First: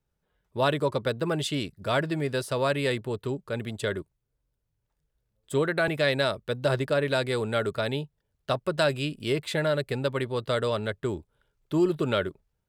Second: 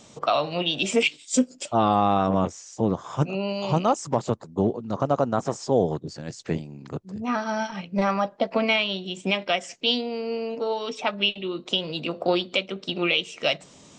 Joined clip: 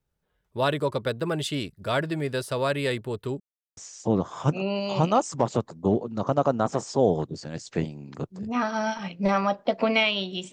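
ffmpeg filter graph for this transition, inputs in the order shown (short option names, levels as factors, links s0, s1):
-filter_complex "[0:a]apad=whole_dur=10.52,atrim=end=10.52,asplit=2[s0][s1];[s0]atrim=end=3.4,asetpts=PTS-STARTPTS,afade=t=out:st=3.396:d=0.004:c=hsin[s2];[s1]atrim=start=3.4:end=3.77,asetpts=PTS-STARTPTS,volume=0[s3];[1:a]atrim=start=2.5:end=9.25,asetpts=PTS-STARTPTS,afade=t=in:d=0.004:c=hsin[s4];[s2][s3][s4]concat=n=3:v=0:a=1"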